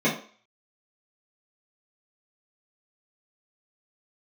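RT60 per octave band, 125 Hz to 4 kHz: 0.20, 0.40, 0.40, 0.45, 0.45, 0.45 seconds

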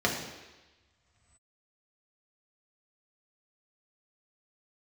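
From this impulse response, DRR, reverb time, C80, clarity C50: −2.0 dB, non-exponential decay, 7.0 dB, 5.0 dB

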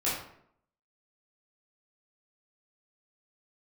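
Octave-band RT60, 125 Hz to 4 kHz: 0.65, 0.75, 0.70, 0.65, 0.55, 0.45 seconds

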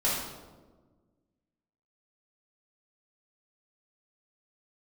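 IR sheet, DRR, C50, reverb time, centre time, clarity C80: −10.0 dB, 0.5 dB, 1.4 s, 70 ms, 3.5 dB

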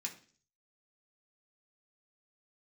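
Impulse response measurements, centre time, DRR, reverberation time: 12 ms, −1.0 dB, 0.45 s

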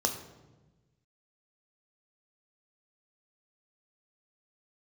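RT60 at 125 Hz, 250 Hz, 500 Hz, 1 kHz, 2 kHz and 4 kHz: 1.7, 1.6, 1.3, 1.0, 0.90, 0.75 seconds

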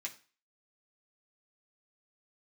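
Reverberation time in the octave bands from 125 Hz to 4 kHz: 0.35, 0.35, 0.35, 0.40, 0.40, 0.35 seconds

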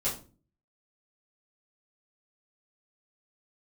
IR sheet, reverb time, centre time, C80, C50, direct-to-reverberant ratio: 0.35 s, 27 ms, 14.0 dB, 8.5 dB, −10.0 dB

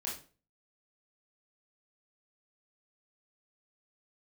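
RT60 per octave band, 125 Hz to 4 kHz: 0.50, 0.45, 0.40, 0.35, 0.35, 0.30 seconds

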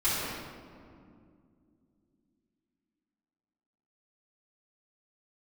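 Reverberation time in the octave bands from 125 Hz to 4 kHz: 3.4, 4.0, 2.6, 2.1, 1.6, 1.1 seconds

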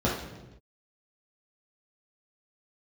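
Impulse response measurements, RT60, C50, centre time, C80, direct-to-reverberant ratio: non-exponential decay, 3.0 dB, 50 ms, 7.0 dB, −7.5 dB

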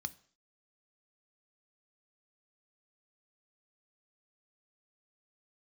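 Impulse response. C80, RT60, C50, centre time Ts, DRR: 24.5 dB, 0.50 s, 21.0 dB, 2 ms, 12.0 dB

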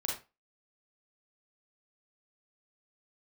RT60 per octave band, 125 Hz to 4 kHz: 0.25, 0.25, 0.25, 0.25, 0.25, 0.20 seconds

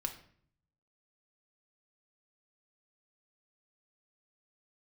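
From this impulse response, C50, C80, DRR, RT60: 11.0 dB, 14.5 dB, 3.0 dB, 0.55 s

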